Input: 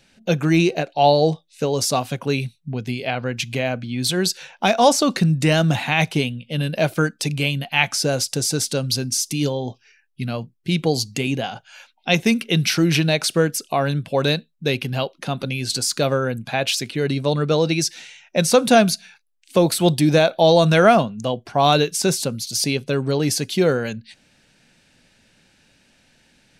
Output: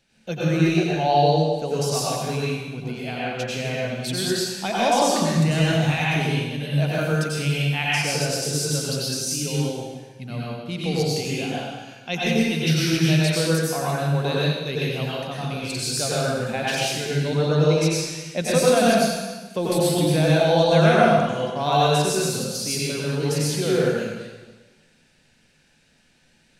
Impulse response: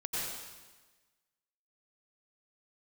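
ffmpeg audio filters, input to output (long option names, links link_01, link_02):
-filter_complex "[0:a]asettb=1/sr,asplit=3[link_01][link_02][link_03];[link_01]atrim=end=15.634[link_04];[link_02]atrim=start=15.63:end=18.42,asetpts=PTS-STARTPTS,afade=type=in:duration=0.004:curve=qsin,afade=type=out:start_time=2.786:duration=0.004:curve=qsin,aphaser=in_gain=1:out_gain=1:delay=1.4:decay=0.32:speed=1.1:type=sinusoidal[link_05];[link_03]atrim=start=18.416[link_06];[link_04][link_05]acrossfade=duration=0.004:curve1=hsin:curve2=qsin[link_07];[link_07][link_06]acrossfade=duration=0.004:curve1=qsin:curve2=hsin[link_08];[1:a]atrim=start_sample=2205[link_09];[link_08][link_09]afir=irnorm=-1:irlink=0,volume=-7dB"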